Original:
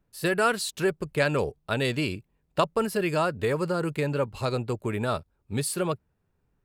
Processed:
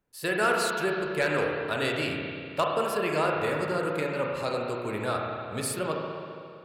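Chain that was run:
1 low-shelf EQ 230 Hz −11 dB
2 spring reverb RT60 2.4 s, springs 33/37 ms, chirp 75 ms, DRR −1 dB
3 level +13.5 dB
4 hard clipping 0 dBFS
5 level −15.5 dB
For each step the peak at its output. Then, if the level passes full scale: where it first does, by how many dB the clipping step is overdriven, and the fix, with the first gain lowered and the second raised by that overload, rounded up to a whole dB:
−9.0, −8.0, +5.5, 0.0, −15.5 dBFS
step 3, 5.5 dB
step 3 +7.5 dB, step 5 −9.5 dB

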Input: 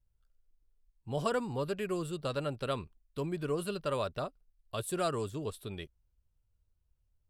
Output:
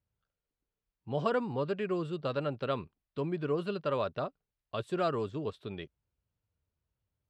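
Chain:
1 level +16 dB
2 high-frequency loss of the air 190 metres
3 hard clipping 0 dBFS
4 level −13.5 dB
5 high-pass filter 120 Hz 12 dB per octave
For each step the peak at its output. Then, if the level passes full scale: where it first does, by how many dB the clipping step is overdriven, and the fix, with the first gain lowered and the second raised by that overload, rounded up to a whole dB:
−1.0, −2.0, −2.0, −15.5, −16.0 dBFS
no step passes full scale

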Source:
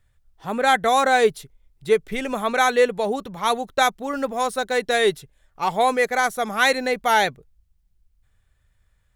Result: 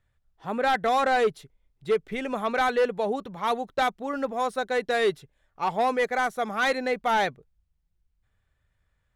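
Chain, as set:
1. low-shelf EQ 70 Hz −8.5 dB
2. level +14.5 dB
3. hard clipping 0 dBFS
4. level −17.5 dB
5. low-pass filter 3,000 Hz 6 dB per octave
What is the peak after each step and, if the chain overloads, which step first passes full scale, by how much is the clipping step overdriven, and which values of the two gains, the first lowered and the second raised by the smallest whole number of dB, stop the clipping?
−6.0, +8.5, 0.0, −17.5, −17.5 dBFS
step 2, 8.5 dB
step 2 +5.5 dB, step 4 −8.5 dB

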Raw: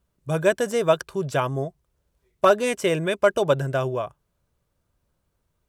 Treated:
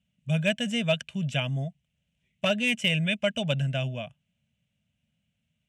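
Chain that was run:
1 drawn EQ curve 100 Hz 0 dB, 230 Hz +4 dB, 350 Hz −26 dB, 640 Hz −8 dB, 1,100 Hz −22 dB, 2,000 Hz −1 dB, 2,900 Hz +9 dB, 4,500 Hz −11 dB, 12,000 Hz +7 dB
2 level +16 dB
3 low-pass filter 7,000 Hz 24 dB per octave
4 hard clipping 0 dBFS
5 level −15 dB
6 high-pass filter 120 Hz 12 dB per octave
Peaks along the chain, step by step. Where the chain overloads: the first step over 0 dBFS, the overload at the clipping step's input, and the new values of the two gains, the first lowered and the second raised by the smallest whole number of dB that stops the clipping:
−12.0, +4.0, +3.5, 0.0, −15.0, −12.5 dBFS
step 2, 3.5 dB
step 2 +12 dB, step 5 −11 dB

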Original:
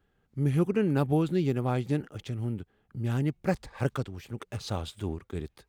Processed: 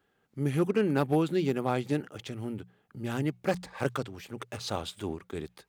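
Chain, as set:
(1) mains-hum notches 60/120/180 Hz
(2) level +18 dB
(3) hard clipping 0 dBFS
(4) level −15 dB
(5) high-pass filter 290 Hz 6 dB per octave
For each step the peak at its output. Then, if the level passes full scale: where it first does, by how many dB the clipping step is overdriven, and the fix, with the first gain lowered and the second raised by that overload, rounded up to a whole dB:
−14.0, +4.0, 0.0, −15.0, −12.5 dBFS
step 2, 4.0 dB
step 2 +14 dB, step 4 −11 dB

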